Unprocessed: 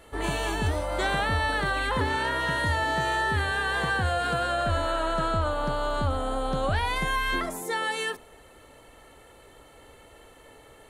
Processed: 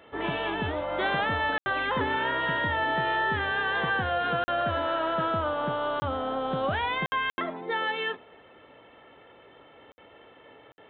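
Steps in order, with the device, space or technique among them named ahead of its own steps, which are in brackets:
call with lost packets (high-pass filter 140 Hz 12 dB per octave; downsampling to 8,000 Hz; dropped packets bursts)

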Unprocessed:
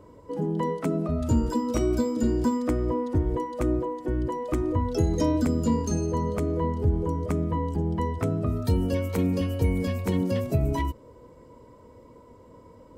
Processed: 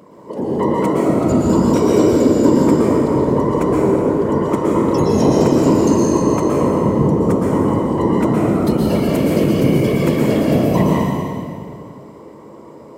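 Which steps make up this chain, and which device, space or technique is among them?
low-shelf EQ 140 Hz +9 dB
whispering ghost (random phases in short frames; high-pass filter 220 Hz 12 dB per octave; convolution reverb RT60 2.2 s, pre-delay 110 ms, DRR −4.5 dB)
level +6 dB

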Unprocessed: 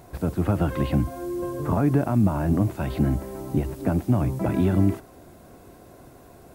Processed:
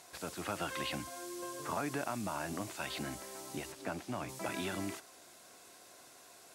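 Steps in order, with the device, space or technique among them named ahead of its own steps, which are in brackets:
0:03.72–0:04.29: high-shelf EQ 5,100 Hz −9 dB
piezo pickup straight into a mixer (low-pass filter 6,300 Hz 12 dB per octave; first difference)
level +10 dB

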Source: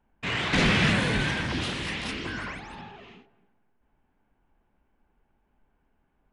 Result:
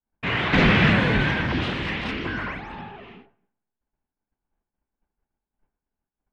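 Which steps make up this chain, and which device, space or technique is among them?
hearing-loss simulation (low-pass filter 2,800 Hz 12 dB per octave; downward expander −55 dBFS)
level +5.5 dB

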